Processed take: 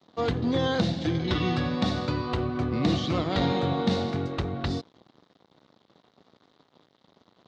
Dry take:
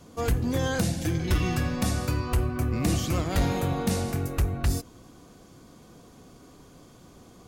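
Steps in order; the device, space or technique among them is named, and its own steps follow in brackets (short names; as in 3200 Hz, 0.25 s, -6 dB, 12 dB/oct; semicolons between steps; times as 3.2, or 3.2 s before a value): blown loudspeaker (crossover distortion -48 dBFS; speaker cabinet 140–4300 Hz, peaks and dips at 1600 Hz -4 dB, 2500 Hz -6 dB, 3800 Hz +7 dB); gain +3.5 dB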